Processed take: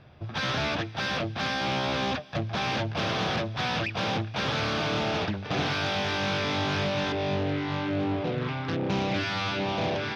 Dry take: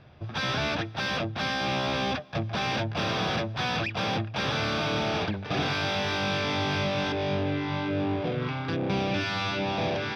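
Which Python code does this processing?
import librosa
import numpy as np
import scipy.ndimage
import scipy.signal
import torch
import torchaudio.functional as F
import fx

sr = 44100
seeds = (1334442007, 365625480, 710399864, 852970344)

y = fx.echo_wet_highpass(x, sr, ms=229, feedback_pct=72, hz=1600.0, wet_db=-24)
y = fx.doppler_dist(y, sr, depth_ms=0.3)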